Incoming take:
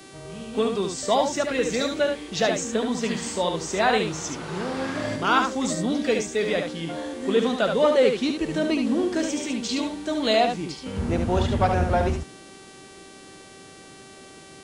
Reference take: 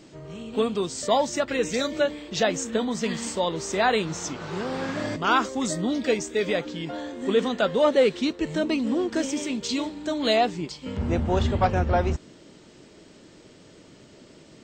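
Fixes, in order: de-hum 387.6 Hz, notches 28; inverse comb 72 ms -5.5 dB

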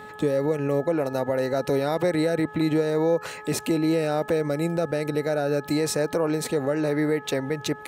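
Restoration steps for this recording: de-hum 425.5 Hz, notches 4

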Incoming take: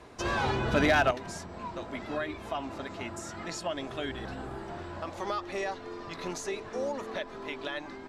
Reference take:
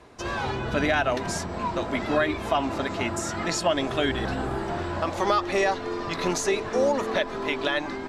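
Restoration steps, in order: clip repair -16 dBFS; trim 0 dB, from 1.11 s +10.5 dB

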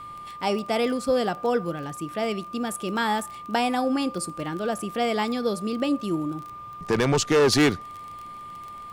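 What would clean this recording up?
de-click; band-stop 1.2 kHz, Q 30

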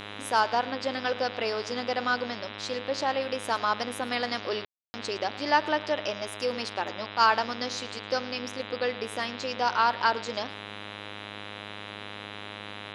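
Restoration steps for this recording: de-hum 103.1 Hz, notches 39; room tone fill 4.65–4.94 s; inverse comb 109 ms -19.5 dB

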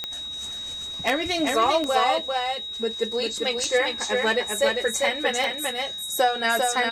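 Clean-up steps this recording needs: de-click; band-stop 3.8 kHz, Q 30; inverse comb 397 ms -4 dB

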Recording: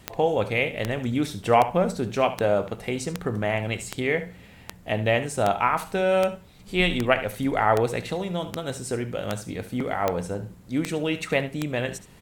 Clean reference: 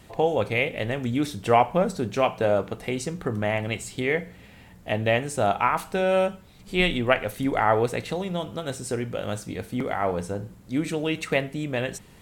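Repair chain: de-click; inverse comb 73 ms -14 dB

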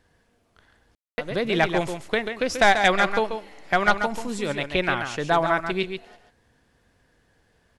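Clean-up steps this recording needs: room tone fill 0.95–1.18 s; inverse comb 137 ms -7.5 dB

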